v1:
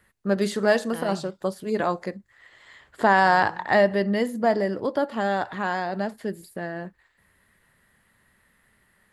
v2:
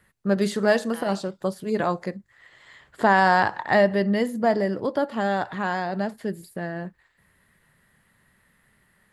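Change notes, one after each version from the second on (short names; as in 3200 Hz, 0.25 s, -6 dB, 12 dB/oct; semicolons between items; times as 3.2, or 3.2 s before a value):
second voice: add HPF 580 Hz; master: add bell 150 Hz +5.5 dB 0.65 oct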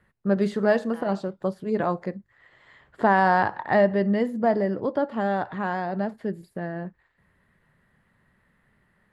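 second voice: add air absorption 170 m; master: add LPF 1500 Hz 6 dB/oct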